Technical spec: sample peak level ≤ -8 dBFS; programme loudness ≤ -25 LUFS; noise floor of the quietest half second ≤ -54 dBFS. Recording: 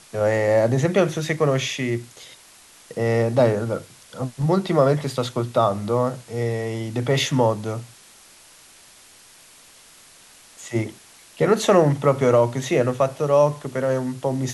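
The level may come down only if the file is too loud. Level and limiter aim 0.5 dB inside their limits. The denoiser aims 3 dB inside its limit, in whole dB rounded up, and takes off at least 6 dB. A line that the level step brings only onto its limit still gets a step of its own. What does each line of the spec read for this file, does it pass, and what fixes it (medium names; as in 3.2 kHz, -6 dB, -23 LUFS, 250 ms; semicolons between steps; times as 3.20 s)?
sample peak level -4.5 dBFS: fail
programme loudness -21.5 LUFS: fail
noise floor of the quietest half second -49 dBFS: fail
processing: noise reduction 6 dB, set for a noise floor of -49 dBFS; trim -4 dB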